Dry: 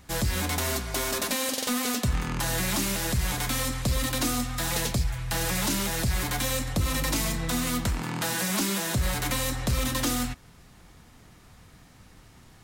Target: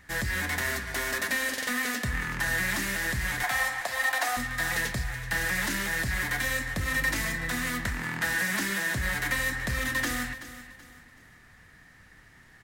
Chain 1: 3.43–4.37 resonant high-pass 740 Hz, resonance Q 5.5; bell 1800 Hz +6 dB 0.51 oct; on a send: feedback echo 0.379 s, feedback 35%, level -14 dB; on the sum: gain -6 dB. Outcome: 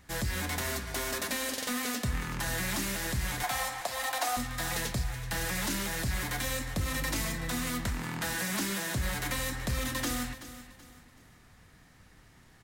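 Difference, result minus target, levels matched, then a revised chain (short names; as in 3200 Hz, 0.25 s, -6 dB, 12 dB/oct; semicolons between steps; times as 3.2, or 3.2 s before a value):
2000 Hz band -5.0 dB
3.43–4.37 resonant high-pass 740 Hz, resonance Q 5.5; bell 1800 Hz +17.5 dB 0.51 oct; on a send: feedback echo 0.379 s, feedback 35%, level -14 dB; on the sum: gain -6 dB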